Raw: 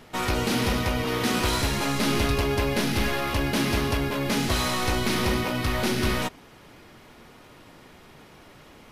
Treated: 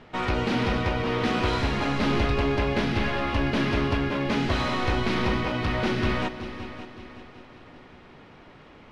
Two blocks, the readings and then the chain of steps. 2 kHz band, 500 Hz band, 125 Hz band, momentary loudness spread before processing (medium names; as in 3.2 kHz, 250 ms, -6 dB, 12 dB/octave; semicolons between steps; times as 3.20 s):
-0.5 dB, +0.5 dB, +0.5 dB, 2 LU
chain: low-pass 3.2 kHz 12 dB/octave; on a send: multi-head delay 189 ms, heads second and third, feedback 45%, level -14 dB